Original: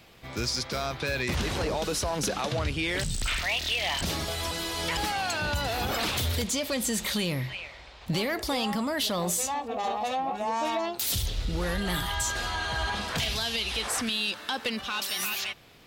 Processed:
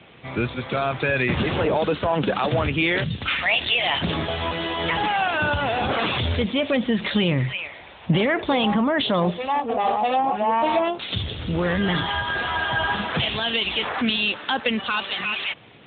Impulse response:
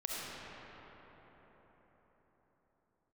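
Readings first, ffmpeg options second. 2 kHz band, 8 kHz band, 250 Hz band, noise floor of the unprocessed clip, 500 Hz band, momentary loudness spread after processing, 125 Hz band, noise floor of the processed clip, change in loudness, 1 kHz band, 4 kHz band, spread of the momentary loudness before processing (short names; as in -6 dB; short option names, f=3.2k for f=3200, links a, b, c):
+7.5 dB, under -40 dB, +9.0 dB, -47 dBFS, +8.5 dB, 6 LU, +6.5 dB, -43 dBFS, +6.0 dB, +8.0 dB, +4.5 dB, 4 LU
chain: -af "volume=9dB" -ar 8000 -c:a libopencore_amrnb -b:a 10200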